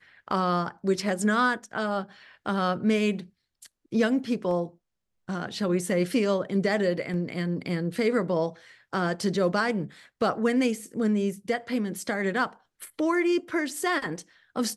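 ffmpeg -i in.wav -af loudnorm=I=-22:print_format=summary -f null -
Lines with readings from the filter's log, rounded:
Input Integrated:    -27.4 LUFS
Input True Peak:     -12.1 dBTP
Input LRA:             1.5 LU
Input Threshold:     -37.8 LUFS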